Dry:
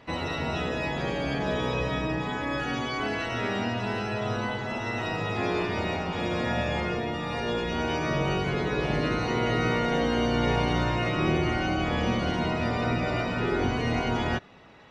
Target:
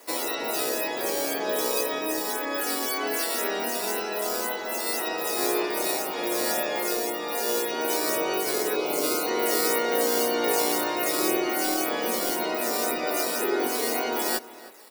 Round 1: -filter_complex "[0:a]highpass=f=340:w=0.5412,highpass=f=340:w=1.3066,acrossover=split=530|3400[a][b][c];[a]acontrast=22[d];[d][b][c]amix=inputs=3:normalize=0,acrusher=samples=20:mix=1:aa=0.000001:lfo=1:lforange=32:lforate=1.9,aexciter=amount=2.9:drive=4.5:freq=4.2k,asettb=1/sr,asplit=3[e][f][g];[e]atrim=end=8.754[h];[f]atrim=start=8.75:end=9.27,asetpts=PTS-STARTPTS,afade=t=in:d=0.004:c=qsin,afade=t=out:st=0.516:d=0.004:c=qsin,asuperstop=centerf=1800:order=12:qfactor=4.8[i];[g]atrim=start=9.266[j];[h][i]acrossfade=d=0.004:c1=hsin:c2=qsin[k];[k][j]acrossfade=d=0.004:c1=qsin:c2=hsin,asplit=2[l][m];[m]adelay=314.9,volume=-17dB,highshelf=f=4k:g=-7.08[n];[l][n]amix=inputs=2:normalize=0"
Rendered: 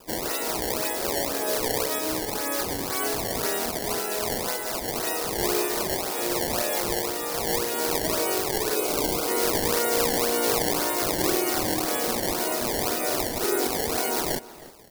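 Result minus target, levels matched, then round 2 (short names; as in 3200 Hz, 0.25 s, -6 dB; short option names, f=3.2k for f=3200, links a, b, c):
decimation with a swept rate: distortion +13 dB
-filter_complex "[0:a]highpass=f=340:w=0.5412,highpass=f=340:w=1.3066,acrossover=split=530|3400[a][b][c];[a]acontrast=22[d];[d][b][c]amix=inputs=3:normalize=0,acrusher=samples=4:mix=1:aa=0.000001:lfo=1:lforange=6.4:lforate=1.9,aexciter=amount=2.9:drive=4.5:freq=4.2k,asettb=1/sr,asplit=3[e][f][g];[e]atrim=end=8.754[h];[f]atrim=start=8.75:end=9.27,asetpts=PTS-STARTPTS,afade=t=in:d=0.004:c=qsin,afade=t=out:st=0.516:d=0.004:c=qsin,asuperstop=centerf=1800:order=12:qfactor=4.8[i];[g]atrim=start=9.266[j];[h][i]acrossfade=d=0.004:c1=hsin:c2=qsin[k];[k][j]acrossfade=d=0.004:c1=qsin:c2=hsin,asplit=2[l][m];[m]adelay=314.9,volume=-17dB,highshelf=f=4k:g=-7.08[n];[l][n]amix=inputs=2:normalize=0"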